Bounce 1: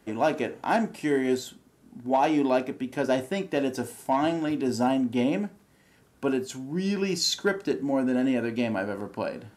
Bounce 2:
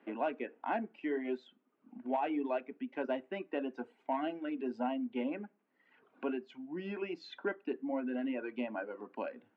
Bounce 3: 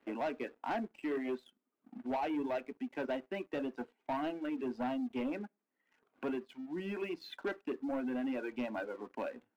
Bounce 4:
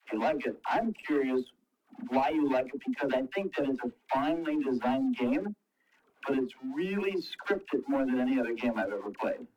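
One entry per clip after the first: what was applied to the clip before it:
reverb removal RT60 1 s; Chebyshev band-pass 240–2700 Hz, order 3; three-band squash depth 40%; gain -9 dB
sample leveller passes 2; gain -6 dB
dispersion lows, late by 74 ms, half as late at 550 Hz; gain +7.5 dB; AAC 96 kbps 44100 Hz

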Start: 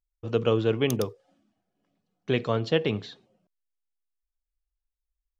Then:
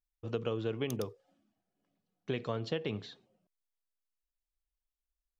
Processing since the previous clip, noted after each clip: compressor, threshold -24 dBFS, peak gain reduction 7.5 dB; gain -6 dB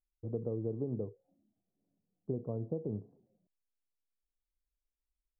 Gaussian blur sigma 14 samples; gain +1 dB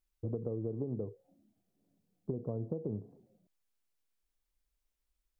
compressor, threshold -39 dBFS, peak gain reduction 8.5 dB; gain +6 dB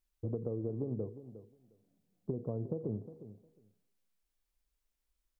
feedback echo 0.358 s, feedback 15%, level -13.5 dB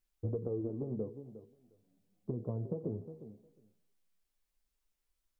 flange 0.43 Hz, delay 8.9 ms, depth 5.5 ms, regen +30%; gain +4 dB

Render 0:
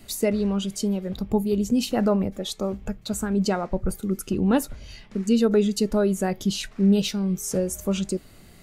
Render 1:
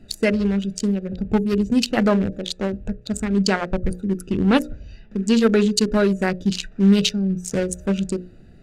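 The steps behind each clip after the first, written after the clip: Wiener smoothing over 41 samples; band shelf 3500 Hz +8.5 dB 2.9 oct; notches 60/120/180/240/300/360/420/480/540/600 Hz; gain +4.5 dB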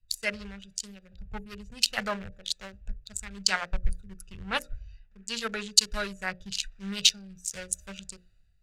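passive tone stack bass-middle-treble 10-0-10; three-band expander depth 70%; gain -1.5 dB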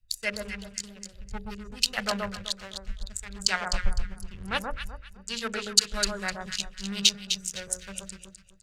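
echo with dull and thin repeats by turns 0.127 s, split 1300 Hz, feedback 51%, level -2 dB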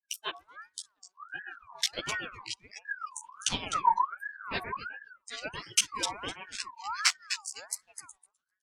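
chorus voices 2, 1.4 Hz, delay 13 ms, depth 3 ms; spectral noise reduction 26 dB; ring modulator with a swept carrier 1300 Hz, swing 30%, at 1.4 Hz; gain +1 dB

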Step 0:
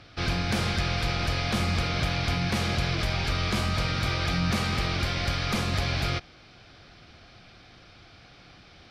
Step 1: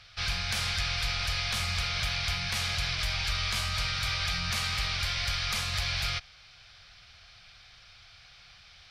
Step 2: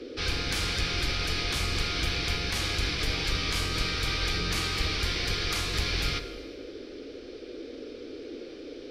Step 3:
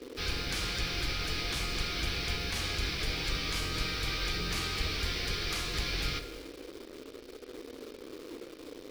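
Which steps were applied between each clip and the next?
passive tone stack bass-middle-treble 10-0-10; gain +3.5 dB
octaver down 1 oct, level +1 dB; band noise 260–510 Hz -42 dBFS; reverb RT60 1.6 s, pre-delay 5 ms, DRR 9.5 dB
flange 0.4 Hz, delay 4.3 ms, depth 2.3 ms, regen -72%; in parallel at -4.5 dB: bit-crush 7-bit; on the sum: gain -4 dB

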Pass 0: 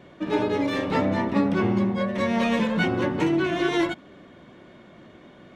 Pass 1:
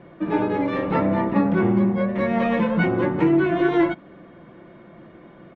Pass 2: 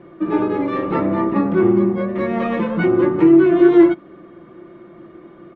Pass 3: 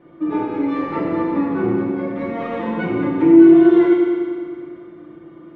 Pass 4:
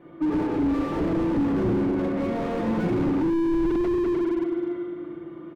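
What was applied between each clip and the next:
LPF 1900 Hz 12 dB/oct; comb 5.9 ms, depth 38%; gain +2.5 dB
small resonant body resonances 350/1200 Hz, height 11 dB, ringing for 45 ms; gain -1 dB
FDN reverb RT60 2 s, low-frequency decay 1.1×, high-frequency decay 1×, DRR -4.5 dB; gain -8 dB
echo 0.901 s -21.5 dB; slew limiter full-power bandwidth 28 Hz

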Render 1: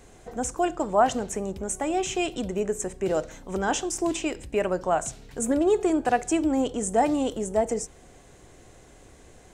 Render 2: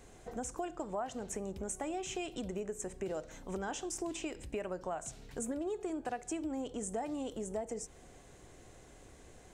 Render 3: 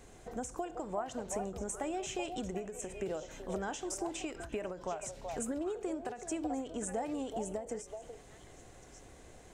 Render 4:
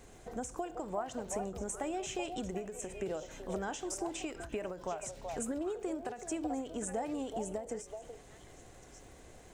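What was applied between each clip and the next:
compressor 5:1, threshold -31 dBFS, peak gain reduction 14.5 dB; gain -5 dB
delay with a stepping band-pass 0.379 s, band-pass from 670 Hz, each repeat 1.4 oct, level -3.5 dB; ending taper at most 130 dB/s; gain +1 dB
crackle 170/s -55 dBFS

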